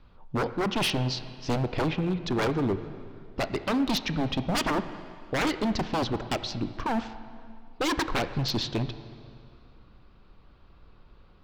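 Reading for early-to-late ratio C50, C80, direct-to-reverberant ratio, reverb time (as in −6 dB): 12.0 dB, 13.0 dB, 11.0 dB, 2.2 s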